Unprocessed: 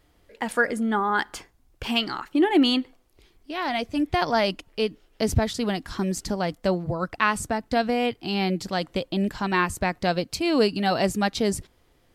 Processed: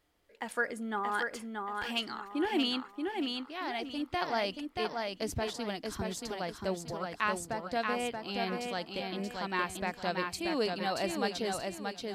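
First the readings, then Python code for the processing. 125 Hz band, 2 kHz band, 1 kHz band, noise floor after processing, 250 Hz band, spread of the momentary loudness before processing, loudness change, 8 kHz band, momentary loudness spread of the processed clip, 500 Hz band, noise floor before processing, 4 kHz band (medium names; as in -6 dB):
-13.5 dB, -7.5 dB, -8.0 dB, -56 dBFS, -11.5 dB, 7 LU, -9.5 dB, -7.5 dB, 5 LU, -9.0 dB, -63 dBFS, -7.5 dB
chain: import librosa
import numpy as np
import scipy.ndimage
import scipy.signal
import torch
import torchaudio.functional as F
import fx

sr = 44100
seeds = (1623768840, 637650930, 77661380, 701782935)

y = fx.low_shelf(x, sr, hz=220.0, db=-9.0)
y = fx.echo_feedback(y, sr, ms=630, feedback_pct=34, wet_db=-4.0)
y = y * librosa.db_to_amplitude(-9.0)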